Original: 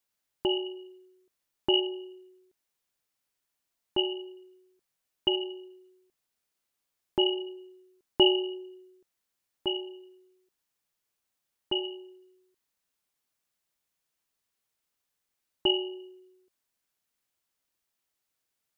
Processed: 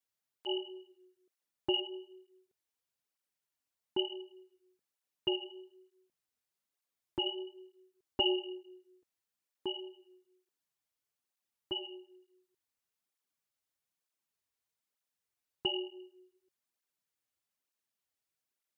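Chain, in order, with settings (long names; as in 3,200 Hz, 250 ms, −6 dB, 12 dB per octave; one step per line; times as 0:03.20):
through-zero flanger with one copy inverted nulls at 1.1 Hz, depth 6 ms
level −4 dB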